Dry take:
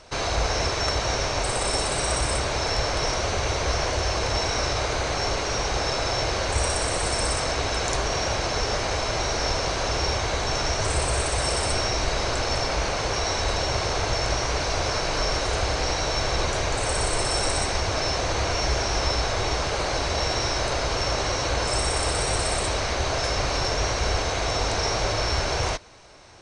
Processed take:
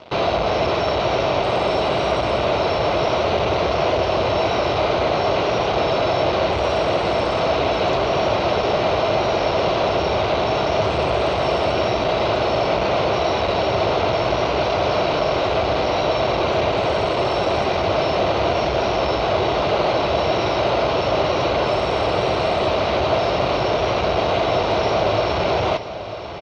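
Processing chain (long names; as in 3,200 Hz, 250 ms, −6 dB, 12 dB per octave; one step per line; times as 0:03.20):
notch filter 2,200 Hz, Q 19
in parallel at −10 dB: fuzz pedal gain 44 dB, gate −44 dBFS
on the sum: loudspeaker in its box 110–3,600 Hz, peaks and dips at 180 Hz +4 dB, 360 Hz +4 dB, 640 Hz +6 dB, 1,700 Hz −10 dB
repeating echo 942 ms, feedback 57%, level −13 dB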